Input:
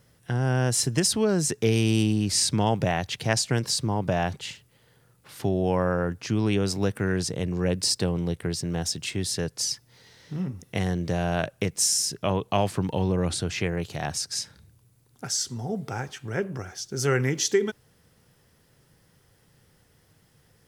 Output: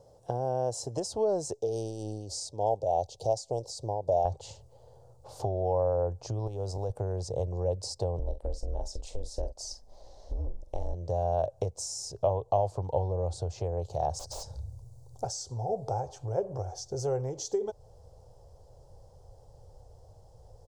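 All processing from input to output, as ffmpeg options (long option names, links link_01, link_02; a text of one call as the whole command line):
ffmpeg -i in.wav -filter_complex "[0:a]asettb=1/sr,asplit=3[link_01][link_02][link_03];[link_01]atrim=end=1.534[link_04];[link_02]atrim=start=1.53:end=4.25,asetpts=PTS-STARTPTS,afade=type=in:duration=0.004:curve=qsin,afade=type=out:start_time=2.716:duration=0.004:curve=qsin,asuperstop=centerf=1600:order=4:qfactor=0.62,equalizer=frequency=87:width=0.37:gain=-9,tremolo=f=3.4:d=0.55[link_05];[link_03]atrim=start=4.246[link_06];[link_04][link_05]acrossfade=duration=0.004:curve1=hsin:curve2=qsin[link_07];[link_07][link_06]acrossfade=duration=0.004:curve1=qsin:curve2=hsin,asettb=1/sr,asplit=3[link_08][link_09][link_10];[link_08]atrim=end=6.474[link_11];[link_09]atrim=start=6.47:end=6.9,asetpts=PTS-STARTPTS,afade=type=in:duration=0.004:curve=qsin,afade=type=out:start_time=0.426:duration=0.004:curve=qsin,acompressor=threshold=-27dB:ratio=6:attack=3.2:release=140:knee=1:detection=peak,acrusher=bits=7:mode=log:mix=0:aa=0.000001[link_12];[link_10]atrim=start=6.896[link_13];[link_11][link_12]acrossfade=duration=0.004:curve1=hsin:curve2=qsin[link_14];[link_14][link_13]acrossfade=duration=0.004:curve1=qsin:curve2=hsin,asettb=1/sr,asplit=3[link_15][link_16][link_17];[link_15]atrim=end=8.194[link_18];[link_16]atrim=start=8.19:end=10.94,asetpts=PTS-STARTPTS,afade=type=in:duration=0.004:curve=qsin,afade=type=out:start_time=2.746:duration=0.004:curve=qsin,aeval=exprs='val(0)*sin(2*PI*110*n/s)':channel_layout=same,asplit=2[link_19][link_20];[link_20]adelay=44,volume=-11.5dB[link_21];[link_19][link_21]amix=inputs=2:normalize=0,atrim=end_sample=121275[link_22];[link_17]atrim=start=10.936[link_23];[link_18][link_22]acrossfade=duration=0.004:curve1=hsin:curve2=qsin[link_24];[link_24][link_23]acrossfade=duration=0.004:curve1=qsin:curve2=hsin,asettb=1/sr,asplit=3[link_25][link_26][link_27];[link_25]atrim=end=14.194[link_28];[link_26]atrim=start=14.19:end=15.24,asetpts=PTS-STARTPTS,afade=type=in:duration=0.004:curve=qsin,afade=type=out:start_time=1.046:duration=0.004:curve=qsin,bass=frequency=250:gain=6,treble=frequency=4000:gain=7,aeval=exprs='0.0422*(abs(mod(val(0)/0.0422+3,4)-2)-1)':channel_layout=same[link_29];[link_27]atrim=start=15.236[link_30];[link_28][link_29]acrossfade=duration=0.004:curve1=hsin:curve2=qsin[link_31];[link_31][link_30]acrossfade=duration=0.004:curve1=qsin:curve2=hsin,asubboost=boost=11:cutoff=66,acompressor=threshold=-34dB:ratio=3,firequalizer=gain_entry='entry(110,0);entry(150,-5);entry(240,-5);entry(530,14);entry(820,11);entry(1300,-11);entry(1900,-23);entry(4400,-5);entry(7100,-2);entry(11000,-15)':delay=0.05:min_phase=1" out.wav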